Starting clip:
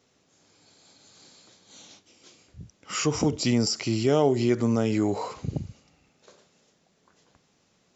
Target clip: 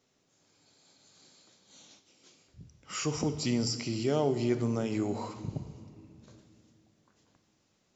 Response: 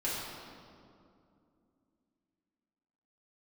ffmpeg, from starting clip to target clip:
-filter_complex "[0:a]asplit=2[link_01][link_02];[1:a]atrim=start_sample=2205,lowshelf=frequency=150:gain=10,highshelf=frequency=3600:gain=10.5[link_03];[link_02][link_03]afir=irnorm=-1:irlink=0,volume=-18.5dB[link_04];[link_01][link_04]amix=inputs=2:normalize=0,volume=-8dB"

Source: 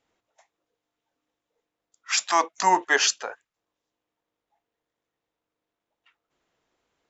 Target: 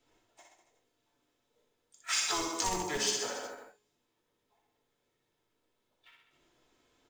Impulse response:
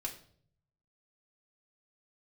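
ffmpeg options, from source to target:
-filter_complex "[0:a]bandreject=frequency=418.5:width_type=h:width=4,bandreject=frequency=837:width_type=h:width=4,bandreject=frequency=1255.5:width_type=h:width=4,bandreject=frequency=1674:width_type=h:width=4,bandreject=frequency=2092.5:width_type=h:width=4,bandreject=frequency=2511:width_type=h:width=4,bandreject=frequency=2929.5:width_type=h:width=4,bandreject=frequency=3348:width_type=h:width=4,bandreject=frequency=3766.5:width_type=h:width=4,bandreject=frequency=4185:width_type=h:width=4,bandreject=frequency=4603.5:width_type=h:width=4,bandreject=frequency=5022:width_type=h:width=4,bandreject=frequency=5440.5:width_type=h:width=4,bandreject=frequency=5859:width_type=h:width=4,bandreject=frequency=6277.5:width_type=h:width=4,bandreject=frequency=6696:width_type=h:width=4,bandreject=frequency=7114.5:width_type=h:width=4,bandreject=frequency=7533:width_type=h:width=4,bandreject=frequency=7951.5:width_type=h:width=4,bandreject=frequency=8370:width_type=h:width=4,bandreject=frequency=8788.5:width_type=h:width=4,acrossover=split=1000[link_01][link_02];[link_02]acompressor=threshold=-31dB:ratio=12[link_03];[link_01][link_03]amix=inputs=2:normalize=0,equalizer=frequency=1100:width=0.76:gain=-4,asplit=3[link_04][link_05][link_06];[link_05]asetrate=22050,aresample=44100,atempo=2,volume=-15dB[link_07];[link_06]asetrate=55563,aresample=44100,atempo=0.793701,volume=-9dB[link_08];[link_04][link_07][link_08]amix=inputs=3:normalize=0,aecho=1:1:60|126|198.6|278.5|366.3:0.631|0.398|0.251|0.158|0.1[link_09];[1:a]atrim=start_sample=2205,afade=type=out:start_time=0.15:duration=0.01,atrim=end_sample=7056,asetrate=61740,aresample=44100[link_10];[link_09][link_10]afir=irnorm=-1:irlink=0,aeval=exprs='clip(val(0),-1,0.0668)':channel_layout=same,acrossover=split=150|3000[link_11][link_12][link_13];[link_12]acompressor=threshold=-42dB:ratio=6[link_14];[link_11][link_14][link_13]amix=inputs=3:normalize=0,acrusher=bits=5:mode=log:mix=0:aa=0.000001,volume=7dB"

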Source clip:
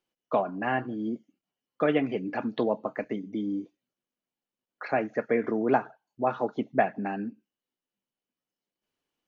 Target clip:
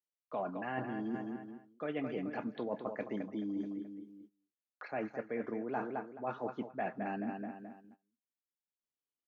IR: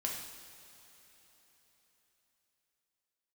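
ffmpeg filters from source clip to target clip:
-filter_complex "[0:a]asplit=2[link_01][link_02];[link_02]adelay=215,lowpass=frequency=3400:poles=1,volume=-11.5dB,asplit=2[link_03][link_04];[link_04]adelay=215,lowpass=frequency=3400:poles=1,volume=0.44,asplit=2[link_05][link_06];[link_06]adelay=215,lowpass=frequency=3400:poles=1,volume=0.44,asplit=2[link_07][link_08];[link_08]adelay=215,lowpass=frequency=3400:poles=1,volume=0.44[link_09];[link_01][link_03][link_05][link_07][link_09]amix=inputs=5:normalize=0,agate=range=-21dB:threshold=-57dB:ratio=16:detection=peak,areverse,acompressor=threshold=-37dB:ratio=6,areverse,volume=1.5dB"

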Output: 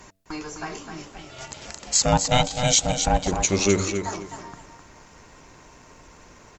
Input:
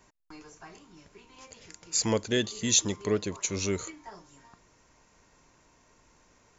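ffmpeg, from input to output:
ffmpeg -i in.wav -filter_complex "[0:a]bandreject=frequency=94.88:width_type=h:width=4,bandreject=frequency=189.76:width_type=h:width=4,bandreject=frequency=284.64:width_type=h:width=4,bandreject=frequency=379.52:width_type=h:width=4,bandreject=frequency=474.4:width_type=h:width=4,bandreject=frequency=569.28:width_type=h:width=4,bandreject=frequency=664.16:width_type=h:width=4,asplit=2[link_01][link_02];[link_02]acompressor=threshold=-40dB:ratio=4,volume=0dB[link_03];[link_01][link_03]amix=inputs=2:normalize=0,asplit=3[link_04][link_05][link_06];[link_04]afade=type=out:start_time=1.05:duration=0.02[link_07];[link_05]aeval=exprs='val(0)*sin(2*PI*380*n/s)':channel_layout=same,afade=type=in:start_time=1.05:duration=0.02,afade=type=out:start_time=3.27:duration=0.02[link_08];[link_06]afade=type=in:start_time=3.27:duration=0.02[link_09];[link_07][link_08][link_09]amix=inputs=3:normalize=0,aecho=1:1:257|514|771:0.422|0.118|0.0331,volume=8.5dB" -ar 48000 -c:a libopus -b:a 48k out.opus

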